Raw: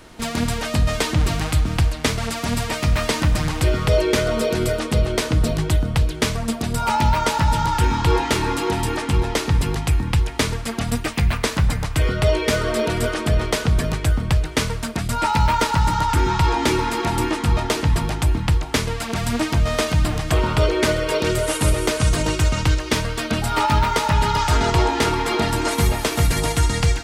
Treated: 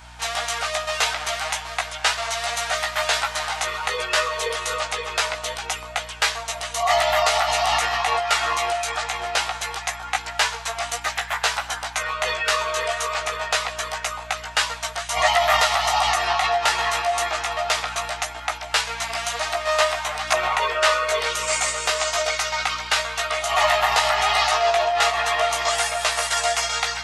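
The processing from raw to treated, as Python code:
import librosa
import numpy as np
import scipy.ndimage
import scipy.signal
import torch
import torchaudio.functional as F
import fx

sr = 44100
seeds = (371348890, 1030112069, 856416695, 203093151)

y = scipy.signal.sosfilt(scipy.signal.butter(4, 830.0, 'highpass', fs=sr, output='sos'), x)
y = fx.add_hum(y, sr, base_hz=60, snr_db=27)
y = fx.formant_shift(y, sr, semitones=-4)
y = fx.chorus_voices(y, sr, voices=6, hz=0.41, base_ms=16, depth_ms=1.7, mix_pct=40)
y = y * 10.0 ** (6.5 / 20.0)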